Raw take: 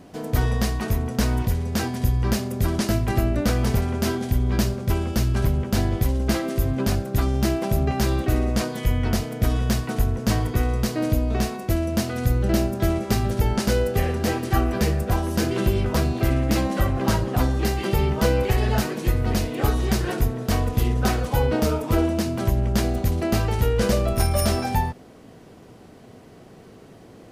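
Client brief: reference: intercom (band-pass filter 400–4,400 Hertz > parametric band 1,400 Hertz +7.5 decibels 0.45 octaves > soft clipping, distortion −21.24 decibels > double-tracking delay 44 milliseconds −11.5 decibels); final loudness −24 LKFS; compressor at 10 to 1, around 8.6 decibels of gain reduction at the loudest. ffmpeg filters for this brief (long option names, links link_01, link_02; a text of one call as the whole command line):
ffmpeg -i in.wav -filter_complex "[0:a]acompressor=threshold=-24dB:ratio=10,highpass=400,lowpass=4400,equalizer=frequency=1400:width_type=o:width=0.45:gain=7.5,asoftclip=threshold=-23.5dB,asplit=2[link_01][link_02];[link_02]adelay=44,volume=-11.5dB[link_03];[link_01][link_03]amix=inputs=2:normalize=0,volume=11.5dB" out.wav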